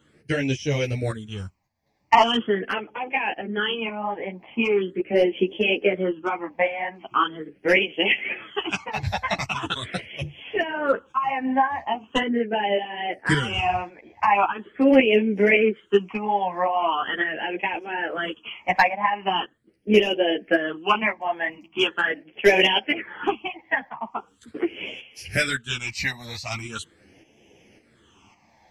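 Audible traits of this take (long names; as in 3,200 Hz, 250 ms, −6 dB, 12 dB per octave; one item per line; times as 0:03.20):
phaser sweep stages 8, 0.41 Hz, lowest notch 390–1,300 Hz
tremolo saw up 1.8 Hz, depth 55%
a shimmering, thickened sound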